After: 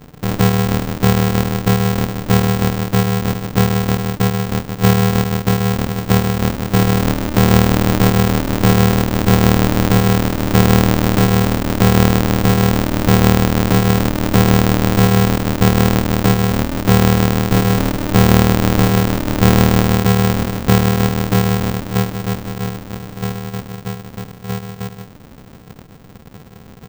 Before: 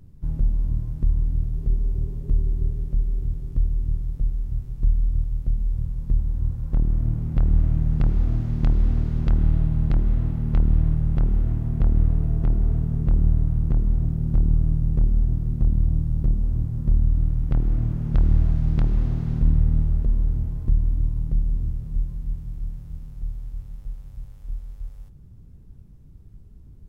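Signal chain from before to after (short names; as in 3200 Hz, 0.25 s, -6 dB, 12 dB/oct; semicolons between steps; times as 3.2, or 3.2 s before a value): polarity switched at an audio rate 150 Hz; gain +5.5 dB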